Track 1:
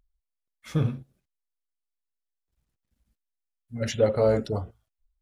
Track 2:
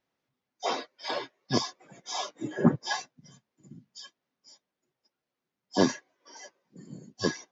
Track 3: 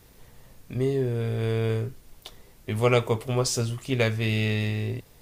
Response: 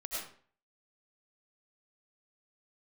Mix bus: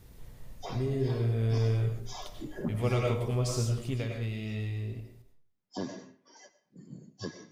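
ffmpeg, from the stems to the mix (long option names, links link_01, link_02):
-filter_complex "[1:a]volume=-9dB,asplit=2[link_01][link_02];[link_02]volume=-14.5dB[link_03];[2:a]volume=-8.5dB,afade=type=out:start_time=3.84:duration=0.21:silence=0.354813,asplit=2[link_04][link_05];[link_05]volume=-3.5dB[link_06];[link_01][link_04]amix=inputs=2:normalize=0,acompressor=threshold=-42dB:ratio=3,volume=0dB[link_07];[3:a]atrim=start_sample=2205[link_08];[link_03][link_06]amix=inputs=2:normalize=0[link_09];[link_09][link_08]afir=irnorm=-1:irlink=0[link_10];[link_07][link_10]amix=inputs=2:normalize=0,lowshelf=frequency=260:gain=9.5"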